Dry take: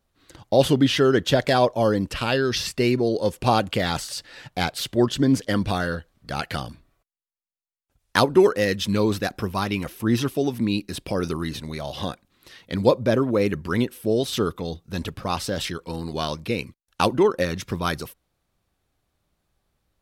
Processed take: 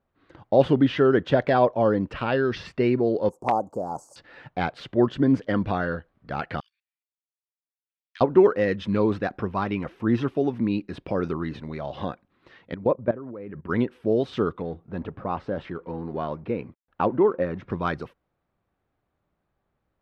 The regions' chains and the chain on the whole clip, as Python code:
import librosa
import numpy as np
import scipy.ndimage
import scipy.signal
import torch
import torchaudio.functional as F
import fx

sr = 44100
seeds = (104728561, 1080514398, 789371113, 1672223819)

y = fx.chain(x, sr, fx.ellip_bandstop(low_hz=930.0, high_hz=6800.0, order=3, stop_db=50),
    fx.riaa(side='recording'),
    fx.overflow_wrap(gain_db=11.0), at=(3.29, 4.16))
y = fx.chain(y, sr, fx.cheby2_highpass(hz=700.0, order=4, stop_db=60),
    fx.level_steps(step_db=18), at=(6.6, 8.21))
y = fx.chain(y, sr, fx.lowpass(hz=2300.0, slope=12),
    fx.level_steps(step_db=18), at=(12.74, 13.69))
y = fx.chain(y, sr, fx.law_mismatch(coded='mu'),
    fx.lowpass(hz=1100.0, slope=6),
    fx.low_shelf(hz=160.0, db=-4.5), at=(14.62, 17.7))
y = scipy.signal.sosfilt(scipy.signal.butter(2, 1800.0, 'lowpass', fs=sr, output='sos'), y)
y = fx.low_shelf(y, sr, hz=74.0, db=-10.0)